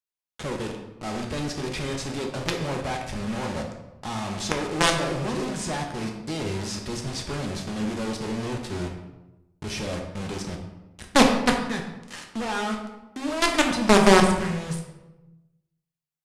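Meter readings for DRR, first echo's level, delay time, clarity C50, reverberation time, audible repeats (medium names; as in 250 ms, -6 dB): 1.0 dB, no echo, no echo, 5.5 dB, 1.0 s, no echo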